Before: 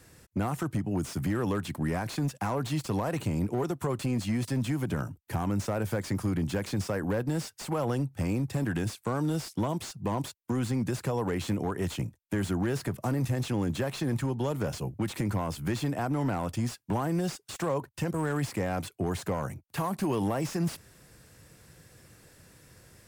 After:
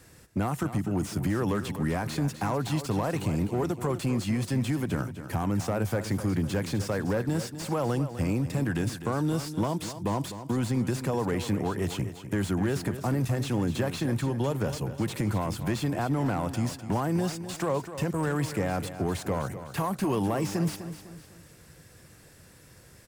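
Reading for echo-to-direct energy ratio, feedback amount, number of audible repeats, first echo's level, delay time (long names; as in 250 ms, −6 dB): −10.5 dB, 41%, 4, −11.5 dB, 252 ms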